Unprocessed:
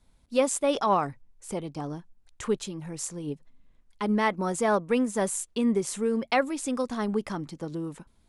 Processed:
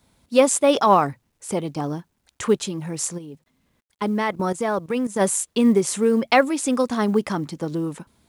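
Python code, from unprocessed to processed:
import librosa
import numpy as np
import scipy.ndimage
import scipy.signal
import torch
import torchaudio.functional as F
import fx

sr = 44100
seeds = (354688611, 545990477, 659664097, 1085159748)

y = scipy.signal.sosfilt(scipy.signal.butter(2, 90.0, 'highpass', fs=sr, output='sos'), x)
y = fx.level_steps(y, sr, step_db=15, at=(3.17, 5.19), fade=0.02)
y = fx.quant_companded(y, sr, bits=8)
y = y * librosa.db_to_amplitude(8.0)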